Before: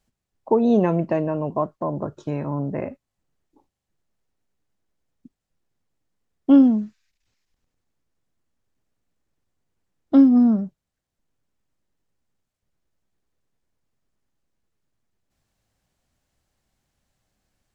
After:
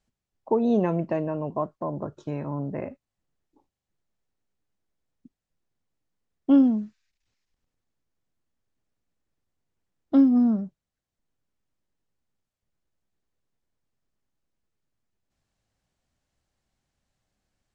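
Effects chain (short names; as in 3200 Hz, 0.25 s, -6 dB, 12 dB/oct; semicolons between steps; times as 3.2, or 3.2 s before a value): LPF 9100 Hz; gain -4.5 dB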